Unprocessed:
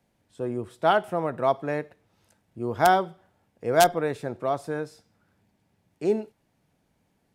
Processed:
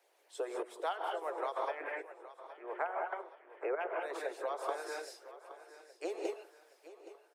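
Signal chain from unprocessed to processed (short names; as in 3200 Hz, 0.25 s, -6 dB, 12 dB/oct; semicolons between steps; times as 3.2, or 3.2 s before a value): 1.62–4.01 elliptic low-pass 2500 Hz, stop band 40 dB; non-linear reverb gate 0.22 s rising, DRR 0.5 dB; chopper 0.64 Hz, depth 60%, duty 40%; steep high-pass 350 Hz 72 dB/oct; harmonic-percussive split harmonic -18 dB; compressor 6:1, threshold -42 dBFS, peak gain reduction 15 dB; feedback echo 0.82 s, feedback 47%, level -15.5 dB; gain +8 dB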